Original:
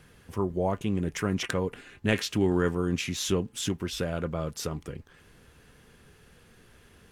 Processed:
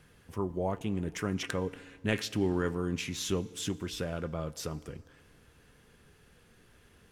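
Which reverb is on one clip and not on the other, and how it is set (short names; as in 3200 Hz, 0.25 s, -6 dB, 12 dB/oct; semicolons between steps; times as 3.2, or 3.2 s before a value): FDN reverb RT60 2 s, low-frequency decay 0.85×, high-frequency decay 0.75×, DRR 17.5 dB; gain -4.5 dB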